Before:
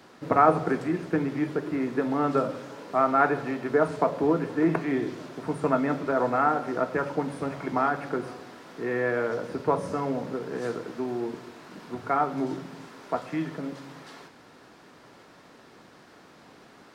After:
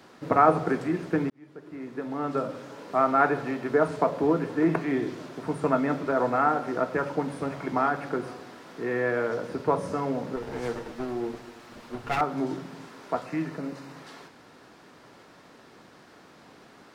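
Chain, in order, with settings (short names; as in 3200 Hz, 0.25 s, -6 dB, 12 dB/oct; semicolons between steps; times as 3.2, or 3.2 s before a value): 1.3–2.96 fade in; 10.36–12.21 minimum comb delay 8.5 ms; 13.24–13.97 notch 3300 Hz, Q 6.8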